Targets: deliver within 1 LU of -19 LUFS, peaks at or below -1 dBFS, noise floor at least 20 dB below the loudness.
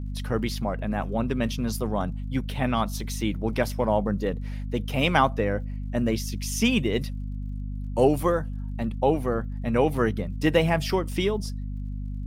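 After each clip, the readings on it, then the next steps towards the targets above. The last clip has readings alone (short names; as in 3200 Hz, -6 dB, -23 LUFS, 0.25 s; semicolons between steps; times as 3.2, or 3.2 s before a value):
ticks 33/s; hum 50 Hz; harmonics up to 250 Hz; hum level -29 dBFS; loudness -26.5 LUFS; peak -6.0 dBFS; loudness target -19.0 LUFS
-> de-click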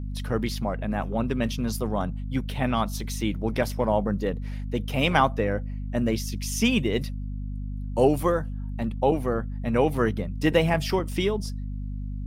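ticks 0.41/s; hum 50 Hz; harmonics up to 250 Hz; hum level -29 dBFS
-> notches 50/100/150/200/250 Hz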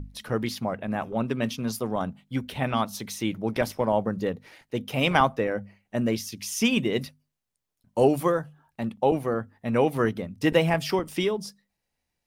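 hum none; loudness -27.0 LUFS; peak -5.5 dBFS; loudness target -19.0 LUFS
-> gain +8 dB; limiter -1 dBFS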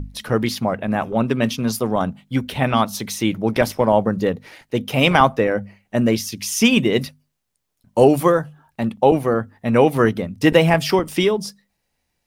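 loudness -19.0 LUFS; peak -1.0 dBFS; noise floor -74 dBFS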